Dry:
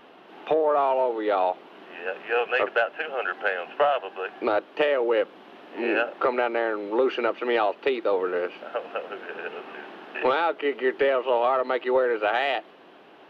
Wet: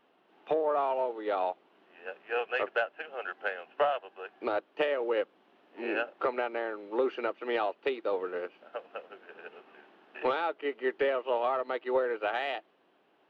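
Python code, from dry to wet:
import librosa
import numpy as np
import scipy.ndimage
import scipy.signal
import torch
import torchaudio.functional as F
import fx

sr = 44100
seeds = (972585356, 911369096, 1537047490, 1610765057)

y = fx.upward_expand(x, sr, threshold_db=-42.0, expansion=1.5)
y = F.gain(torch.from_numpy(y), -5.0).numpy()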